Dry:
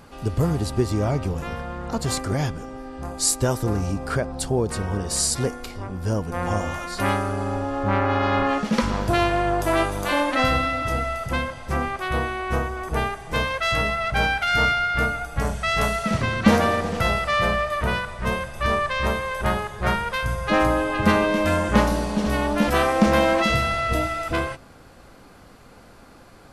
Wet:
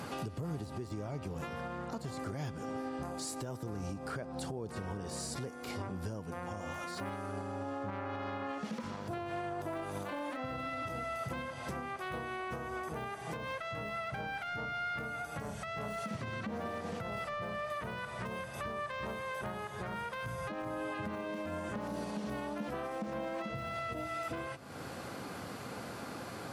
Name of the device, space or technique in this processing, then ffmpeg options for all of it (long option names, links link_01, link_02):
podcast mastering chain: -af "highpass=frequency=95:width=0.5412,highpass=frequency=95:width=1.3066,deesser=0.9,acompressor=threshold=-44dB:ratio=2.5,alimiter=level_in=12dB:limit=-24dB:level=0:latency=1:release=254,volume=-12dB,volume=6.5dB" -ar 48000 -c:a libmp3lame -b:a 112k